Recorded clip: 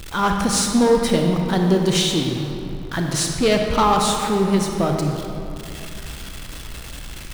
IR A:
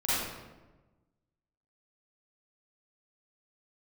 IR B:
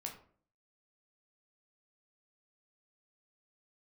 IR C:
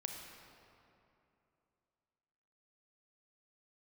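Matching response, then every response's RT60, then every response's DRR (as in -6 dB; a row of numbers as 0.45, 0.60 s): C; 1.2, 0.50, 2.8 s; -11.5, 1.0, 2.0 dB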